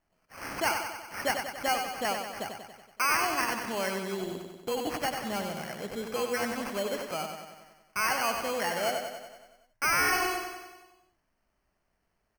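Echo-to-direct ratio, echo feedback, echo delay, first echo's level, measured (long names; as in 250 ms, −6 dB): −4.0 dB, 60%, 94 ms, −6.0 dB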